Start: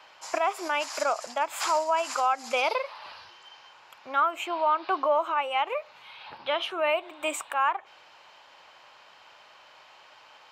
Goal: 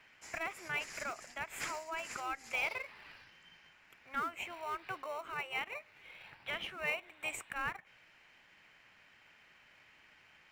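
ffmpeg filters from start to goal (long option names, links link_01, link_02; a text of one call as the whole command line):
ffmpeg -i in.wav -filter_complex "[0:a]equalizer=frequency=125:width_type=o:width=1:gain=6,equalizer=frequency=250:width_type=o:width=1:gain=-12,equalizer=frequency=500:width_type=o:width=1:gain=-9,equalizer=frequency=1000:width_type=o:width=1:gain=-9,equalizer=frequency=2000:width_type=o:width=1:gain=10,equalizer=frequency=4000:width_type=o:width=1:gain=-8,asplit=2[link_01][link_02];[link_02]acrusher=samples=27:mix=1:aa=0.000001,volume=-11.5dB[link_03];[link_01][link_03]amix=inputs=2:normalize=0,volume=-9dB" out.wav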